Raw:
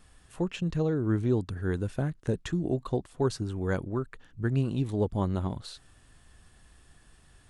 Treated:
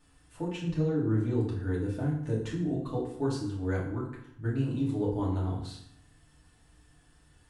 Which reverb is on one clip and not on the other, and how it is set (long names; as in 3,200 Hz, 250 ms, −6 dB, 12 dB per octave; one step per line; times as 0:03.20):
feedback delay network reverb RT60 0.71 s, low-frequency decay 1.2×, high-frequency decay 0.75×, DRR −6 dB
level −10 dB